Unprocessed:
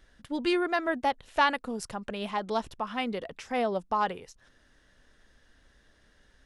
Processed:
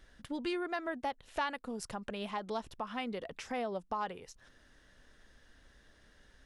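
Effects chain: compressor 2:1, threshold -40 dBFS, peak gain reduction 12 dB

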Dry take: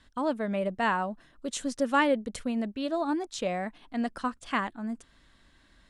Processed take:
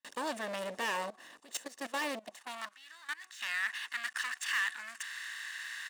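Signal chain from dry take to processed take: per-bin compression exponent 0.6; gate with hold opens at -35 dBFS; passive tone stack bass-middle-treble 6-0-2; comb 1.1 ms, depth 60%; de-hum 372.8 Hz, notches 3; sample leveller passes 5; 1.1–3.41 level quantiser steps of 17 dB; high-pass sweep 500 Hz -> 1600 Hz, 2.16–2.83

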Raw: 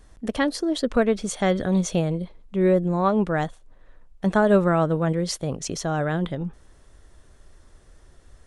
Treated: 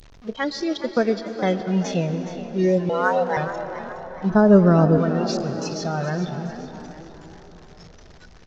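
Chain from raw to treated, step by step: delta modulation 32 kbps, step -24.5 dBFS; spectral noise reduction 17 dB; 0.77–1.75 gate -27 dBFS, range -22 dB; 2.89–3.37 frequency shift +320 Hz; 4.3–4.98 tilt -3 dB/oct; frequency-shifting echo 0.419 s, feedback 43%, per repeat +74 Hz, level -12.5 dB; reverb RT60 4.9 s, pre-delay 0.113 s, DRR 10.5 dB

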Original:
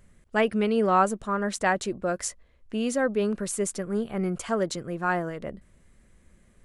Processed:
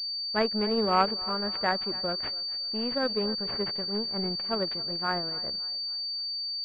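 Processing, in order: thinning echo 0.279 s, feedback 57%, high-pass 380 Hz, level -13 dB; power-law curve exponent 1.4; pulse-width modulation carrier 4600 Hz

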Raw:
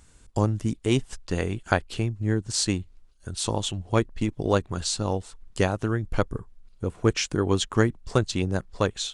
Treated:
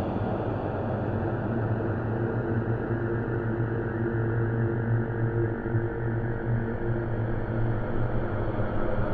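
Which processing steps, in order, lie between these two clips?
random spectral dropouts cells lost 29%; air absorption 330 m; Paulstretch 28×, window 0.50 s, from 5.78; buzz 50 Hz, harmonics 19, -38 dBFS -2 dB/oct

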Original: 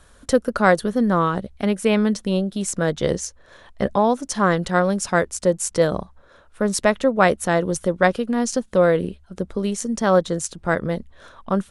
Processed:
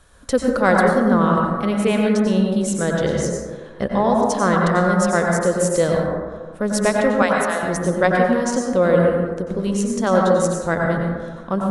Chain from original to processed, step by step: 7.22–7.63 Bessel high-pass 1100 Hz; plate-style reverb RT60 1.5 s, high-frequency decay 0.3×, pre-delay 80 ms, DRR -1 dB; gain -1.5 dB

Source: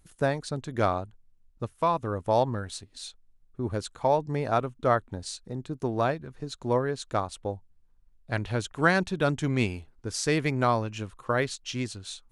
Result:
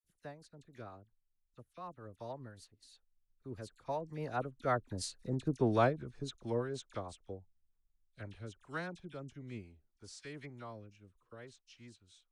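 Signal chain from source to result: Doppler pass-by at 5.49, 17 m/s, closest 6.7 m; dispersion lows, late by 44 ms, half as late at 1900 Hz; rotary speaker horn 6.3 Hz, later 0.6 Hz, at 7.85; gain +1 dB

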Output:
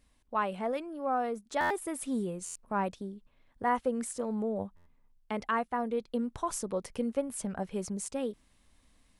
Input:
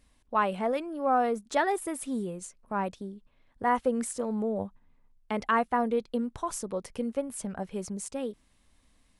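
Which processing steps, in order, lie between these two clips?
vocal rider within 3 dB 0.5 s; stuck buffer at 1.6/2.45/4.76, samples 512, times 8; gain -3 dB

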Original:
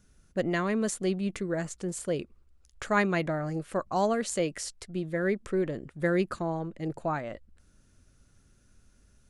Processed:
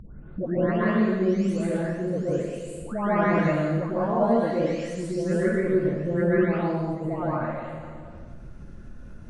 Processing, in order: spectral delay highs late, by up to 0.598 s; LPF 1400 Hz 6 dB/oct; reverb RT60 1.2 s, pre-delay 0.113 s, DRR -8 dB; upward compressor, threshold -25 dBFS; mismatched tape noise reduction decoder only; gain -1 dB

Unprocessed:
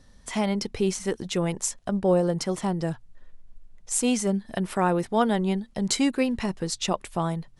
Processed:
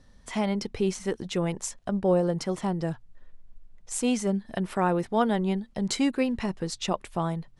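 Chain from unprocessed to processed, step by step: high shelf 5700 Hz -7 dB; gain -1.5 dB

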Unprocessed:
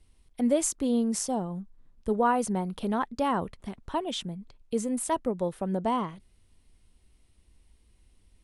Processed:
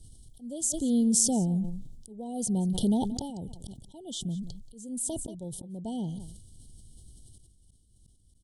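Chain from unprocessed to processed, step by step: graphic EQ 125/500/1000/2000/8000 Hz +9/-4/-11/-7/+8 dB; in parallel at +2 dB: compressor, threshold -35 dBFS, peak gain reduction 15 dB; on the sum: auto swell 0.73 s; brick-wall FIR band-stop 940–2900 Hz; echo 0.18 s -19.5 dB; sustainer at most 47 dB/s

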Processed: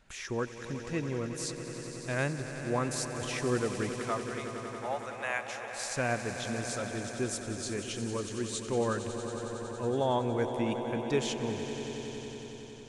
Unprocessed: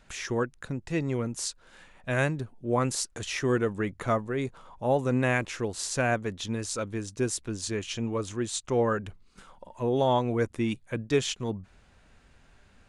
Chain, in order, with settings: 3.99–5.74 HPF 660 Hz 24 dB/oct; swelling echo 92 ms, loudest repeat 5, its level -13 dB; gain -5 dB

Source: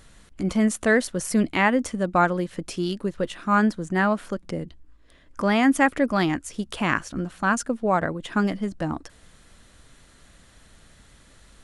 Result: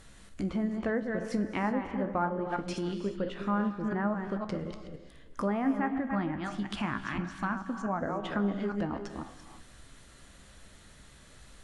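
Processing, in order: reverse delay 0.171 s, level -7.5 dB; treble ducked by the level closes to 1300 Hz, closed at -18.5 dBFS; 5.74–8.01 bell 480 Hz -14 dB 0.59 oct; compressor 2:1, threshold -31 dBFS, peak gain reduction 9.5 dB; resonator 67 Hz, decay 0.25 s, harmonics all, mix 60%; non-linear reverb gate 0.39 s rising, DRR 10 dB; gain +2 dB

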